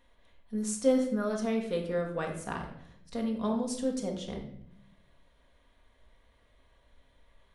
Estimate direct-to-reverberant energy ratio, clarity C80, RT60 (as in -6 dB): 0.5 dB, 10.0 dB, 0.70 s